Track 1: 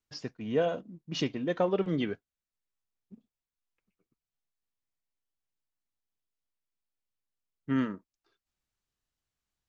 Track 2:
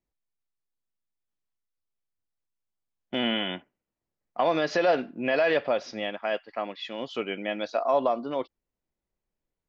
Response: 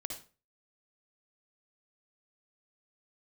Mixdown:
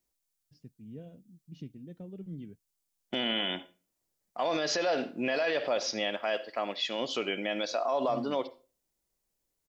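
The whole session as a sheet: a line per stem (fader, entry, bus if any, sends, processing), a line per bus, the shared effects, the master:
-7.5 dB, 0.40 s, no send, FFT filter 180 Hz 0 dB, 1.1 kHz -28 dB, 2.6 kHz -18 dB
0.0 dB, 0.00 s, send -11 dB, tone controls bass -4 dB, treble +12 dB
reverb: on, RT60 0.35 s, pre-delay 52 ms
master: peak limiter -20.5 dBFS, peak gain reduction 10 dB

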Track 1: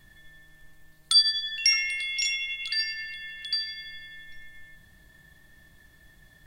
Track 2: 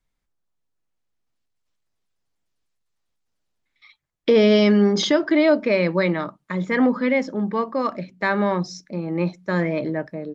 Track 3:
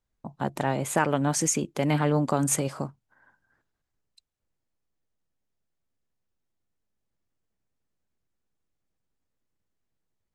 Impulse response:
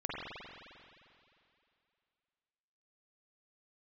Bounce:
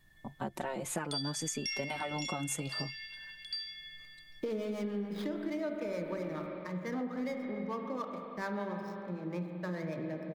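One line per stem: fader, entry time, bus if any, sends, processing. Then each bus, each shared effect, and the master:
-13.0 dB, 0.00 s, send -3.5 dB, none
-13.5 dB, 0.15 s, send -4.5 dB, median filter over 15 samples; harmonic tremolo 6.8 Hz, depth 70%, crossover 460 Hz
-2.0 dB, 0.00 s, no send, endless flanger 4.5 ms -0.68 Hz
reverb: on, RT60 2.6 s, pre-delay 43 ms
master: compression 6:1, threshold -33 dBFS, peak gain reduction 10.5 dB

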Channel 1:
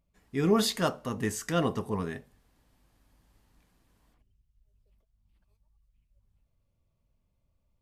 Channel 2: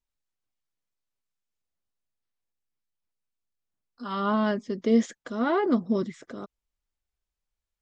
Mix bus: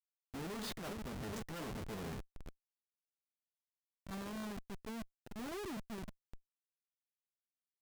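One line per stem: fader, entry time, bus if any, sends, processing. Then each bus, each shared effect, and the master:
-5.0 dB, 0.00 s, no send, echo send -16.5 dB, none
-12.5 dB, 0.00 s, no send, no echo send, none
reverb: none
echo: feedback delay 407 ms, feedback 53%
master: treble shelf 4.5 kHz -8 dB; Schmitt trigger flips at -42.5 dBFS; peak limiter -41.5 dBFS, peak gain reduction 7.5 dB

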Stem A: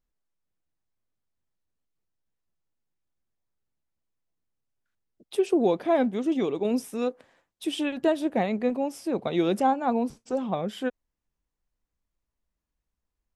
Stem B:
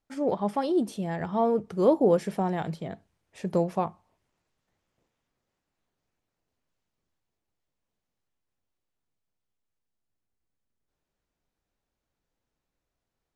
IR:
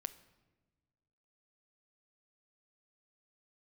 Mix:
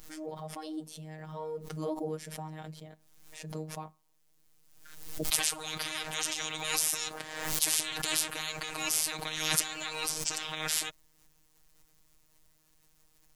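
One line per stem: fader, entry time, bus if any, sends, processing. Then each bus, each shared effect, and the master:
+0.5 dB, 0.00 s, no send, peak limiter -17.5 dBFS, peak gain reduction 5.5 dB; spectrum-flattening compressor 10:1; auto duck -10 dB, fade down 0.25 s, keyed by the second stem
-12.0 dB, 0.00 s, no send, none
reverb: none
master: treble shelf 3.5 kHz +10 dB; robot voice 156 Hz; swell ahead of each attack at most 53 dB/s

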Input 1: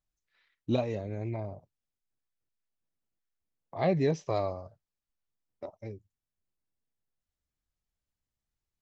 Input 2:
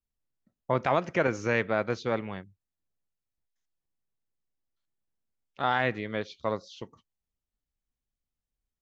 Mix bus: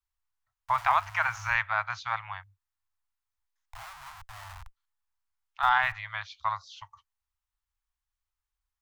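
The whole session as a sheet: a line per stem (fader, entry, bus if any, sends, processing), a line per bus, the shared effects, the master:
-3.0 dB, 0.00 s, no send, peaking EQ 310 Hz -12 dB 0.59 oct; de-hum 83.41 Hz, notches 15; Schmitt trigger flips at -39 dBFS
-0.5 dB, 0.00 s, no send, none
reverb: none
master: inverse Chebyshev band-stop 180–480 Hz, stop band 50 dB; peaking EQ 940 Hz +8.5 dB 1.8 oct

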